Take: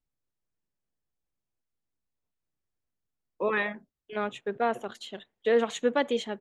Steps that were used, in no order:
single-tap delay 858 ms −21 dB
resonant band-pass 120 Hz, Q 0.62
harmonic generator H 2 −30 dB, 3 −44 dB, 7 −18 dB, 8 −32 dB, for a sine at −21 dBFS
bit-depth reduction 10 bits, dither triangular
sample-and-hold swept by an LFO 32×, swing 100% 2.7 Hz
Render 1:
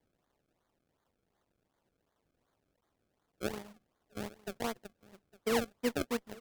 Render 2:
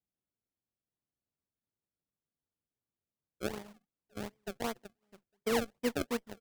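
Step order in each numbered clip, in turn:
resonant band-pass, then bit-depth reduction, then sample-and-hold swept by an LFO, then harmonic generator, then single-tap delay
single-tap delay, then bit-depth reduction, then resonant band-pass, then harmonic generator, then sample-and-hold swept by an LFO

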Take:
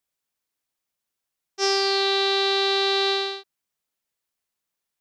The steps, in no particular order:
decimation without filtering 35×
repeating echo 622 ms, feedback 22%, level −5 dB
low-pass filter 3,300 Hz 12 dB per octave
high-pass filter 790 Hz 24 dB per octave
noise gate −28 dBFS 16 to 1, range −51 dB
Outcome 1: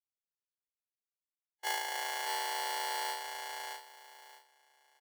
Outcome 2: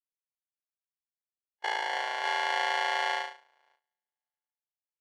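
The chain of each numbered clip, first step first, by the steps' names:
low-pass filter, then decimation without filtering, then high-pass filter, then noise gate, then repeating echo
repeating echo, then decimation without filtering, then high-pass filter, then noise gate, then low-pass filter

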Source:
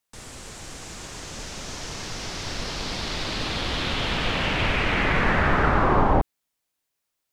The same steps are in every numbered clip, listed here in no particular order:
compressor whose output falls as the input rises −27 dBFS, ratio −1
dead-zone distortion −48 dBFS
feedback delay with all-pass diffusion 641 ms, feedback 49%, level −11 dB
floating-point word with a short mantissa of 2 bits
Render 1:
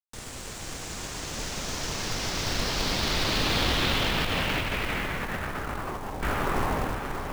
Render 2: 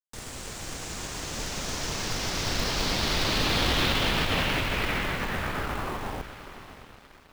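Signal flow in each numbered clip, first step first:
feedback delay with all-pass diffusion, then floating-point word with a short mantissa, then compressor whose output falls as the input rises, then dead-zone distortion
compressor whose output falls as the input rises, then floating-point word with a short mantissa, then feedback delay with all-pass diffusion, then dead-zone distortion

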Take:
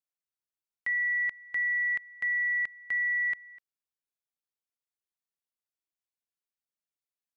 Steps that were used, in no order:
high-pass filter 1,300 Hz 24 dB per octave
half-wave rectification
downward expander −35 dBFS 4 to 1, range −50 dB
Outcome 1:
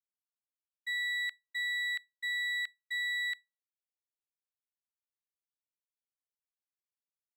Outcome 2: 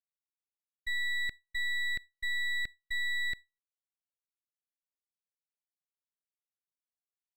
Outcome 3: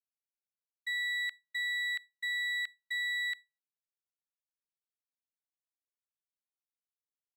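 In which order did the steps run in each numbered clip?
half-wave rectification, then high-pass filter, then downward expander
high-pass filter, then half-wave rectification, then downward expander
half-wave rectification, then downward expander, then high-pass filter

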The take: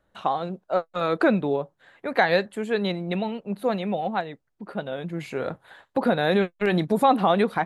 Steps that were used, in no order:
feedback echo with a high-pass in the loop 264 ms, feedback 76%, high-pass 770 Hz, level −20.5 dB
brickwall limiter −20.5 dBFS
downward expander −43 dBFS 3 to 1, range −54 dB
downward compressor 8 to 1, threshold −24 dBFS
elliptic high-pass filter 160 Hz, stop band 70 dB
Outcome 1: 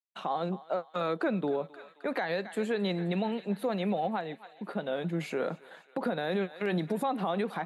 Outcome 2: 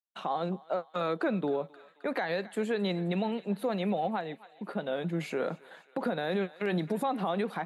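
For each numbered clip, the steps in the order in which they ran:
downward expander, then feedback echo with a high-pass in the loop, then downward compressor, then brickwall limiter, then elliptic high-pass filter
downward expander, then downward compressor, then feedback echo with a high-pass in the loop, then brickwall limiter, then elliptic high-pass filter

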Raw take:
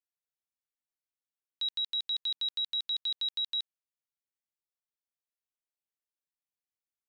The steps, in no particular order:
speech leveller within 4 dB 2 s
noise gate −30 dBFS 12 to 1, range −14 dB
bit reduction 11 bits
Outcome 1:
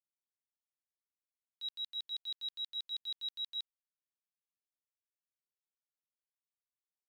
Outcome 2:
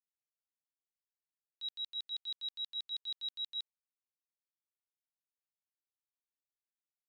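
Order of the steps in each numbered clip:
noise gate, then speech leveller, then bit reduction
bit reduction, then noise gate, then speech leveller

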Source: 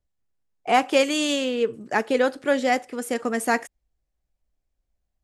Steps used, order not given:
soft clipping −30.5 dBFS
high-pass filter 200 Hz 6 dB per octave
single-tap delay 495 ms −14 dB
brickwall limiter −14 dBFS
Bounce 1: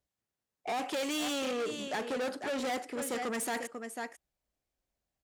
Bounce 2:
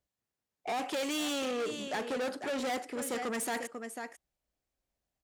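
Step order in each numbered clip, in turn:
single-tap delay, then brickwall limiter, then soft clipping, then high-pass filter
brickwall limiter, then single-tap delay, then soft clipping, then high-pass filter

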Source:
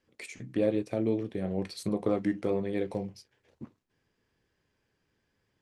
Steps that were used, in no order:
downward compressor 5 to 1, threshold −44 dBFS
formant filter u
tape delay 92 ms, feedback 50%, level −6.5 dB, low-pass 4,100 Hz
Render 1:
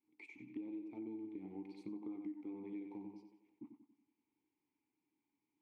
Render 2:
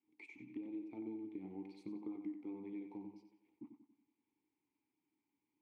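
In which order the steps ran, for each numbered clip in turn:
formant filter, then tape delay, then downward compressor
formant filter, then downward compressor, then tape delay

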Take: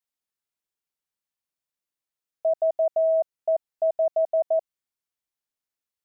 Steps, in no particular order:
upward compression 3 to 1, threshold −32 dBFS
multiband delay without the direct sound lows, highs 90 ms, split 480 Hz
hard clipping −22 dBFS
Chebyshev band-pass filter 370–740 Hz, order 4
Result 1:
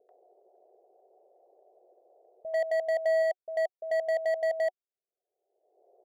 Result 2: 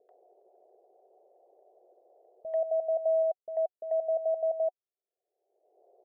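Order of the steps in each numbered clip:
Chebyshev band-pass filter, then upward compression, then hard clipping, then multiband delay without the direct sound
hard clipping, then Chebyshev band-pass filter, then upward compression, then multiband delay without the direct sound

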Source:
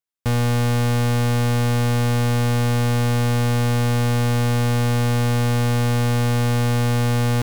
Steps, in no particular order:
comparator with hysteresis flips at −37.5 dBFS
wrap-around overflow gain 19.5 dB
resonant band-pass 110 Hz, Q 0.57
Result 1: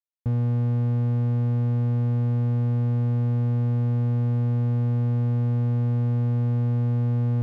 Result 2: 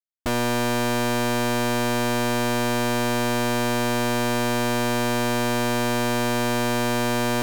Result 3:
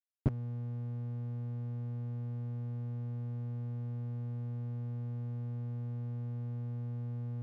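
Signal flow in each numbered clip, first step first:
wrap-around overflow, then comparator with hysteresis, then resonant band-pass
comparator with hysteresis, then resonant band-pass, then wrap-around overflow
comparator with hysteresis, then wrap-around overflow, then resonant band-pass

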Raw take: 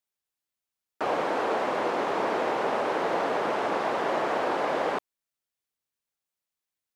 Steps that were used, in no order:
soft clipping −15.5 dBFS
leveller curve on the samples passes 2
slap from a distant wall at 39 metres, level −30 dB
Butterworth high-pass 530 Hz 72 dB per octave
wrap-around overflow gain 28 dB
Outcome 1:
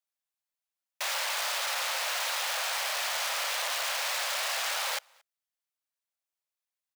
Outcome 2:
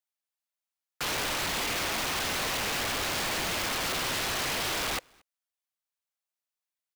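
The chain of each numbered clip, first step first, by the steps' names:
wrap-around overflow, then slap from a distant wall, then leveller curve on the samples, then Butterworth high-pass, then soft clipping
soft clipping, then Butterworth high-pass, then wrap-around overflow, then slap from a distant wall, then leveller curve on the samples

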